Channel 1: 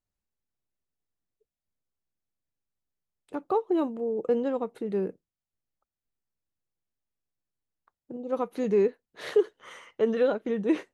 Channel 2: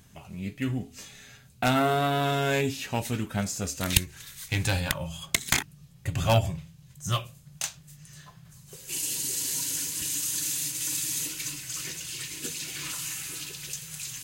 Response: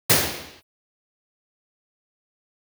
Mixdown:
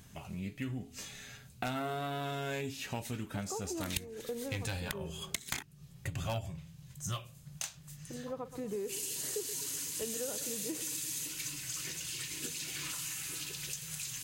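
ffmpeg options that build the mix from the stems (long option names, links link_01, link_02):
-filter_complex "[0:a]volume=-6.5dB,asplit=2[link_01][link_02];[link_02]volume=-14.5dB[link_03];[1:a]volume=0dB[link_04];[link_03]aecho=0:1:126|252|378|504|630|756|882|1008:1|0.52|0.27|0.141|0.0731|0.038|0.0198|0.0103[link_05];[link_01][link_04][link_05]amix=inputs=3:normalize=0,acompressor=threshold=-38dB:ratio=3"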